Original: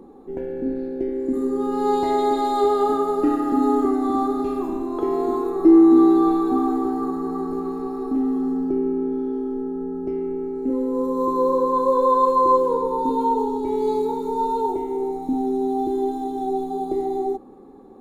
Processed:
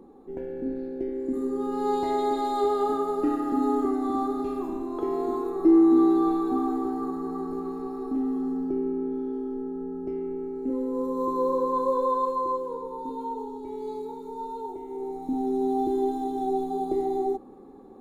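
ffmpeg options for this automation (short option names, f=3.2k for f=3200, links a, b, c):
-af "volume=4.5dB,afade=t=out:st=11.82:d=0.76:silence=0.446684,afade=t=in:st=14.79:d=0.9:silence=0.316228"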